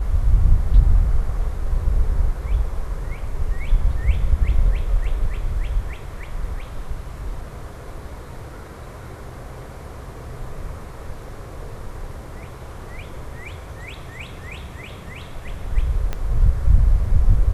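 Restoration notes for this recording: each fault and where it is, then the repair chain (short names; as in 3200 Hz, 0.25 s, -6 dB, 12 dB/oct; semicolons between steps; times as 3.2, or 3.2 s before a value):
16.13 pop -12 dBFS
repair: de-click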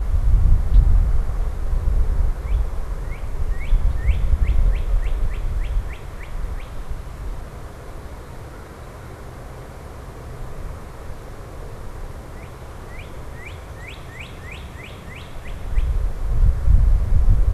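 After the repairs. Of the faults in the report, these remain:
16.13 pop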